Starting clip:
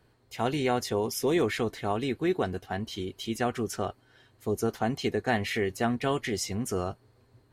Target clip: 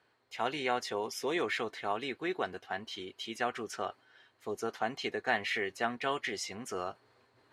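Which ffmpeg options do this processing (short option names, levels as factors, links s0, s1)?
-af "areverse,acompressor=mode=upward:threshold=0.00355:ratio=2.5,areverse,bandpass=f=1800:t=q:w=0.53:csg=0"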